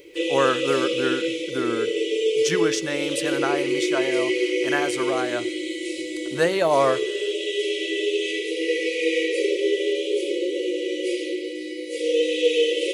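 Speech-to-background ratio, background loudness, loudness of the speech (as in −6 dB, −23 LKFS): −1.0 dB, −24.5 LKFS, −25.5 LKFS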